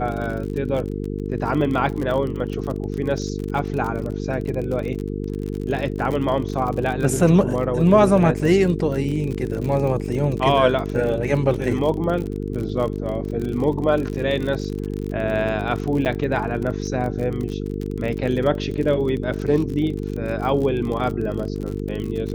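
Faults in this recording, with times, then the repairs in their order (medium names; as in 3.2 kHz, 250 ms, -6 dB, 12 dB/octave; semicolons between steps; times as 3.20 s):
buzz 50 Hz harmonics 9 -27 dBFS
crackle 43 per s -27 dBFS
16.05–16.06 s: dropout 8.8 ms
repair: de-click; de-hum 50 Hz, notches 9; interpolate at 16.05 s, 8.8 ms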